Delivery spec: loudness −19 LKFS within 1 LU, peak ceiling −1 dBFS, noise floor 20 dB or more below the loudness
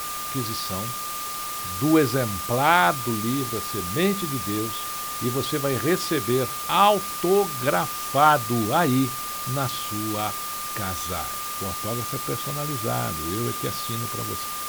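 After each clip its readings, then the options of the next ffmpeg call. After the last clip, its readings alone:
interfering tone 1,200 Hz; level of the tone −32 dBFS; background noise floor −31 dBFS; target noise floor −44 dBFS; integrated loudness −24.0 LKFS; sample peak −3.5 dBFS; target loudness −19.0 LKFS
→ -af "bandreject=frequency=1200:width=30"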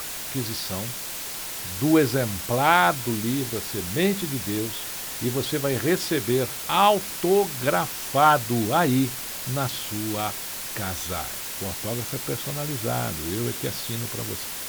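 interfering tone none found; background noise floor −34 dBFS; target noise floor −45 dBFS
→ -af "afftdn=noise_reduction=11:noise_floor=-34"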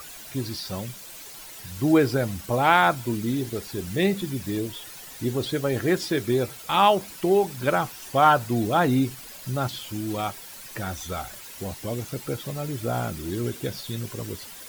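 background noise floor −42 dBFS; target noise floor −46 dBFS
→ -af "afftdn=noise_reduction=6:noise_floor=-42"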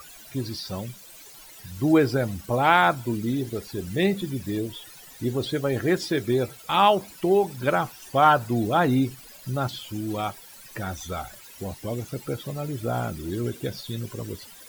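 background noise floor −47 dBFS; integrated loudness −25.5 LKFS; sample peak −4.5 dBFS; target loudness −19.0 LKFS
→ -af "volume=6.5dB,alimiter=limit=-1dB:level=0:latency=1"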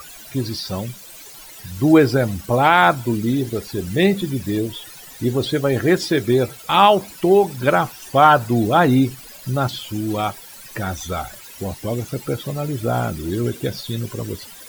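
integrated loudness −19.0 LKFS; sample peak −1.0 dBFS; background noise floor −40 dBFS

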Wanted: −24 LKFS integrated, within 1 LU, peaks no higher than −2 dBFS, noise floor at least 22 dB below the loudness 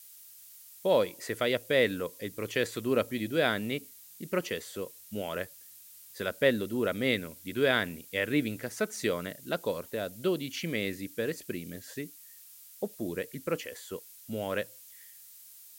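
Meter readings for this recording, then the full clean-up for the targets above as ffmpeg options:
background noise floor −52 dBFS; target noise floor −54 dBFS; integrated loudness −32.0 LKFS; sample peak −11.0 dBFS; target loudness −24.0 LKFS
→ -af "afftdn=noise_reduction=6:noise_floor=-52"
-af "volume=8dB"

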